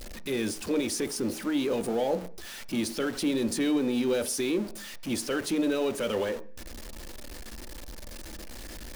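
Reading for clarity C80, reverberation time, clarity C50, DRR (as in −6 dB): 22.5 dB, 0.40 s, 18.0 dB, 10.0 dB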